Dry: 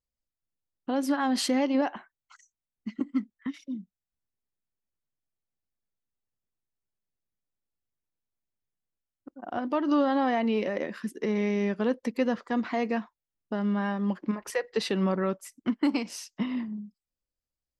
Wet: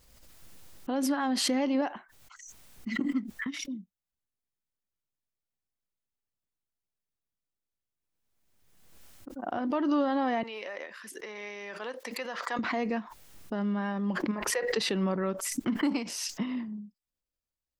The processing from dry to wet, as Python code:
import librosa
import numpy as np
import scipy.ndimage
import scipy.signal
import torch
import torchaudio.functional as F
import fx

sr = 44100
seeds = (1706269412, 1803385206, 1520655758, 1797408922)

y = fx.highpass(x, sr, hz=780.0, slope=12, at=(10.43, 12.59))
y = fx.pre_swell(y, sr, db_per_s=35.0)
y = F.gain(torch.from_numpy(y), -3.0).numpy()